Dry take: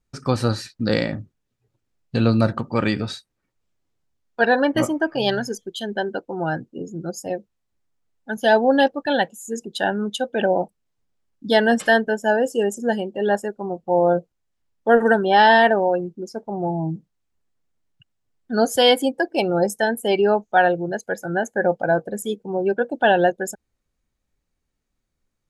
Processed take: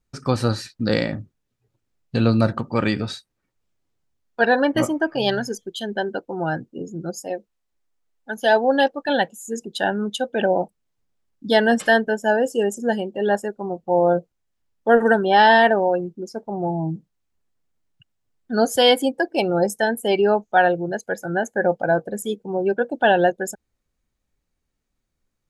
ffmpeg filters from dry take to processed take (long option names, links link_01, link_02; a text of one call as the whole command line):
ffmpeg -i in.wav -filter_complex "[0:a]asettb=1/sr,asplit=3[link_01][link_02][link_03];[link_01]atrim=end=7.234[link_04];[link_02]atrim=start=7.23:end=9.09,asetpts=PTS-STARTPTS,afade=type=in:duration=0.004:curve=qsin,afade=type=out:start_time=1.856:duration=0.004:curve=qsin,equalizer=frequency=120:width=0.96:gain=-13[link_05];[link_03]atrim=start=9.086[link_06];[link_04][link_05]acrossfade=duration=0.004:curve1=hsin:curve2=qsin[link_07];[link_07][link_06]acrossfade=duration=0.004:curve1=qsin:curve2=hsin" out.wav